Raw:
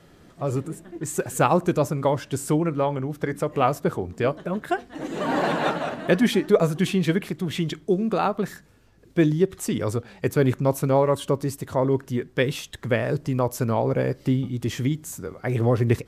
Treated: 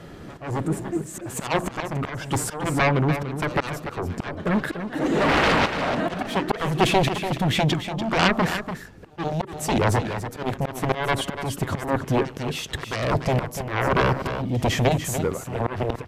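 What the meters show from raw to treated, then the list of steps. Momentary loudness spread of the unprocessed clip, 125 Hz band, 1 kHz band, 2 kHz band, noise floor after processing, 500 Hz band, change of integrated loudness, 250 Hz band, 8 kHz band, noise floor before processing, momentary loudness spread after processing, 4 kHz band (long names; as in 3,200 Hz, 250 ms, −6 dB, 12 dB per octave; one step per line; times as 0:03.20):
9 LU, 0.0 dB, +2.5 dB, +5.5 dB, −41 dBFS, −2.5 dB, 0.0 dB, −1.5 dB, +2.0 dB, −53 dBFS, 10 LU, +6.5 dB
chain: high-shelf EQ 4,100 Hz −7.5 dB
in parallel at −1 dB: brickwall limiter −16.5 dBFS, peak gain reduction 10.5 dB
on the sum: harmonic generator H 3 −26 dB, 7 −8 dB, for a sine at −3.5 dBFS
echo ahead of the sound 136 ms −23.5 dB
volume swells 352 ms
on a send: single-tap delay 291 ms −9.5 dB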